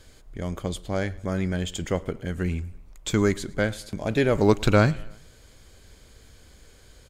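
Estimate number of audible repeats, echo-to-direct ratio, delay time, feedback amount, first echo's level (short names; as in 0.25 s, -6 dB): 3, -22.0 dB, 0.11 s, 53%, -23.5 dB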